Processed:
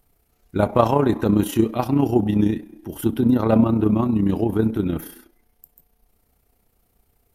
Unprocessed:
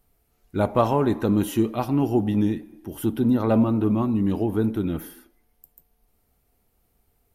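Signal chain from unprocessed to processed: AM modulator 30 Hz, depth 40%; gain +5.5 dB

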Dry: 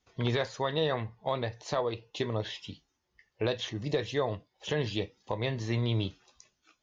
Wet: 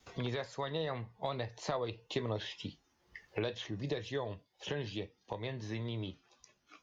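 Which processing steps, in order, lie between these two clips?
Doppler pass-by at 2.41, 9 m/s, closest 9.4 m; wow and flutter 29 cents; three-band squash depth 70%; gain -2 dB

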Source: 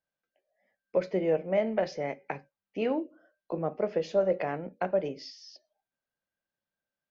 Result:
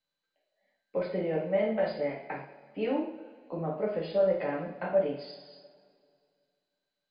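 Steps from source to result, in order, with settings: two-slope reverb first 0.52 s, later 2.3 s, from -19 dB, DRR -4.5 dB; gain -6.5 dB; MP2 64 kbps 16000 Hz

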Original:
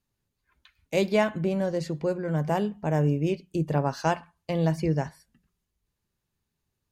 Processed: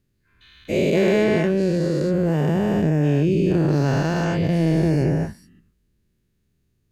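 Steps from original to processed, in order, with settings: spectral dilation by 0.48 s; EQ curve 370 Hz 0 dB, 900 Hz -15 dB, 1800 Hz -6 dB, 5900 Hz -9 dB; in parallel at +0.5 dB: compressor, threshold -29 dBFS, peak gain reduction 12 dB

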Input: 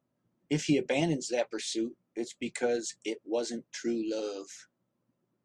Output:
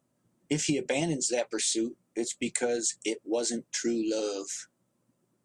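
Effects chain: bell 8500 Hz +11.5 dB 0.86 oct; compressor, threshold -29 dBFS, peak gain reduction 8 dB; gain +4.5 dB

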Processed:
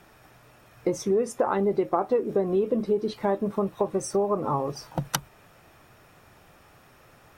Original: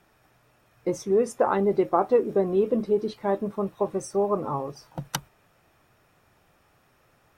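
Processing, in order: compressor 3:1, threshold -32 dBFS, peak gain reduction 12.5 dB; gain +8 dB

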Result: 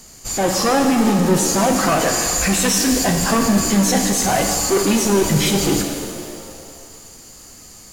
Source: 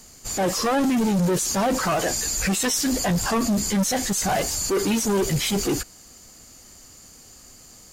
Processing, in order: shimmer reverb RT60 2.2 s, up +7 st, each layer -8 dB, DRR 3 dB; gain +4 dB

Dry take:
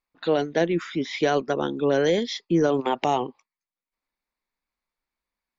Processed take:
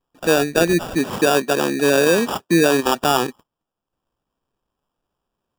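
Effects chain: in parallel at -2 dB: limiter -21 dBFS, peak gain reduction 11 dB; on the sum: sample-and-hold 21×; 0.95–2.83 HPF 140 Hz 12 dB/oct; gain +3.5 dB

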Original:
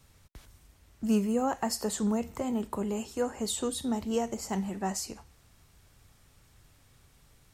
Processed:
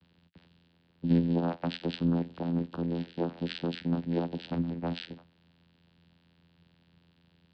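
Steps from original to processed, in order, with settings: nonlinear frequency compression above 2300 Hz 4:1; vocoder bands 8, saw 85 Hz; gain +1 dB

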